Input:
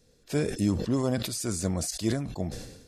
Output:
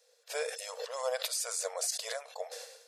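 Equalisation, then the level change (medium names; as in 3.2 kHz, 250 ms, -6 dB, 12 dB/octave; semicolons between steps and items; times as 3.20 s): brick-wall FIR high-pass 450 Hz; 0.0 dB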